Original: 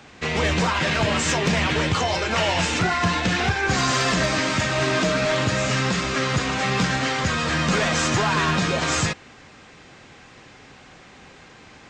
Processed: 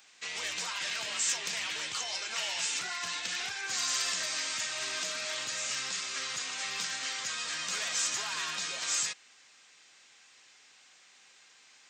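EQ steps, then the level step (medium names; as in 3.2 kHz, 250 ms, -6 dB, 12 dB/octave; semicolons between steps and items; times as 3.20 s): differentiator; -1.5 dB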